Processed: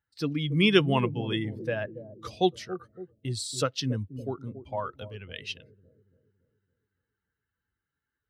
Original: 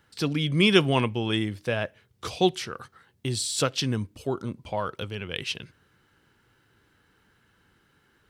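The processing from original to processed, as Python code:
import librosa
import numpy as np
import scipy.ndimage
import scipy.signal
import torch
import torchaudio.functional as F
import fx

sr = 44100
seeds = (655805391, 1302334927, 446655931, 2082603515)

y = fx.bin_expand(x, sr, power=1.5)
y = scipy.signal.sosfilt(scipy.signal.butter(2, 62.0, 'highpass', fs=sr, output='sos'), y)
y = fx.high_shelf(y, sr, hz=6700.0, db=-8.0)
y = fx.echo_bbd(y, sr, ms=281, stages=1024, feedback_pct=50, wet_db=-11.0)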